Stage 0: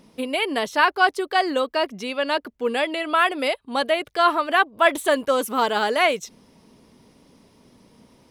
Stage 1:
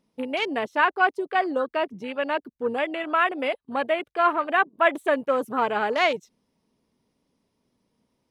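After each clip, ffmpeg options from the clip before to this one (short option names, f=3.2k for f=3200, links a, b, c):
-af "afwtdn=0.0355,volume=-2.5dB"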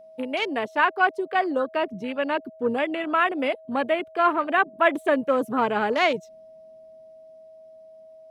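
-filter_complex "[0:a]acrossover=split=320|960[a][b][c];[a]dynaudnorm=f=380:g=9:m=6.5dB[d];[d][b][c]amix=inputs=3:normalize=0,aeval=exprs='val(0)+0.00562*sin(2*PI*640*n/s)':c=same"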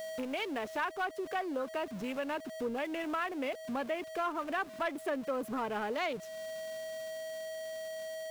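-af "aeval=exprs='val(0)+0.5*0.0224*sgn(val(0))':c=same,acompressor=threshold=-35dB:ratio=2,volume=22.5dB,asoftclip=hard,volume=-22.5dB,volume=-4dB"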